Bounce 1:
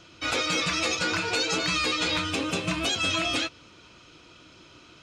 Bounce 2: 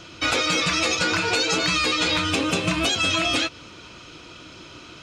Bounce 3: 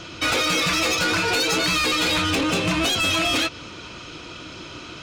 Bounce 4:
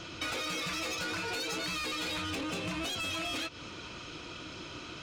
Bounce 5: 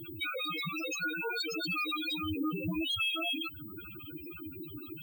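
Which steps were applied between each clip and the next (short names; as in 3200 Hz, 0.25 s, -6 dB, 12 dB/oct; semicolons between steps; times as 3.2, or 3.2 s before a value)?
compressor 3:1, threshold -29 dBFS, peak gain reduction 5.5 dB; gain +9 dB
high shelf 9900 Hz -5.5 dB; soft clip -23 dBFS, distortion -11 dB; gain +5.5 dB
compressor 6:1, threshold -28 dBFS, peak gain reduction 8 dB; gain -6.5 dB
high shelf 5800 Hz +4 dB; loudest bins only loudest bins 4; pulse-width modulation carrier 16000 Hz; gain +6.5 dB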